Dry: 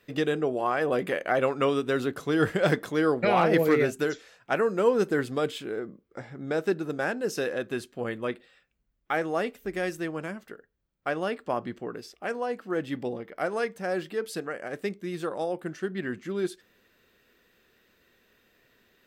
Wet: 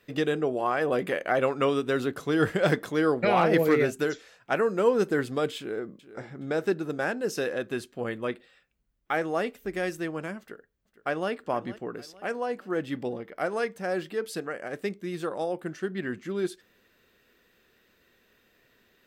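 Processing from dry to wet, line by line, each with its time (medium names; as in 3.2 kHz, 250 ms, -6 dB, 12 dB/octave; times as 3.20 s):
5.57–6.24 s: echo throw 420 ms, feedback 35%, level -15 dB
10.39–11.30 s: echo throw 460 ms, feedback 45%, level -16.5 dB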